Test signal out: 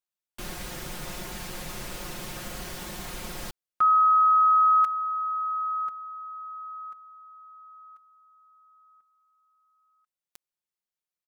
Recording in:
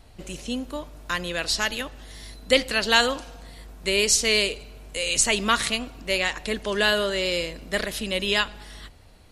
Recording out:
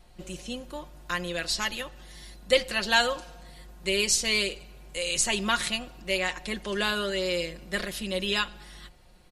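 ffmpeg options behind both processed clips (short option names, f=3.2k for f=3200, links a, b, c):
-af "aecho=1:1:5.6:0.65,volume=-5.5dB"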